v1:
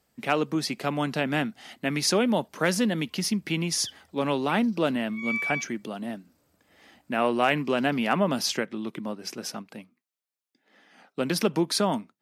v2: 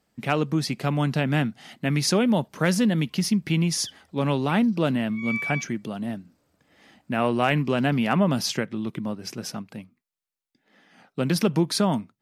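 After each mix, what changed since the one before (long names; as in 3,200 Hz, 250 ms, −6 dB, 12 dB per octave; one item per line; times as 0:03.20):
speech: remove high-pass filter 250 Hz 12 dB per octave
background: add high-shelf EQ 11,000 Hz −11.5 dB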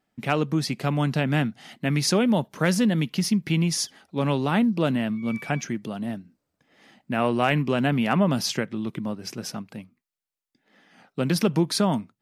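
background −11.5 dB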